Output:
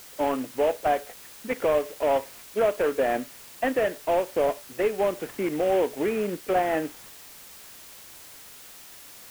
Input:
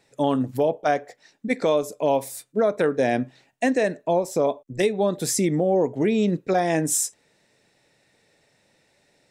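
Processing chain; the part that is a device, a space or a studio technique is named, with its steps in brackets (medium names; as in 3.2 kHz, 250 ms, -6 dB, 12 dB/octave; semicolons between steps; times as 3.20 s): army field radio (band-pass 370–2900 Hz; CVSD coder 16 kbps; white noise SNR 19 dB)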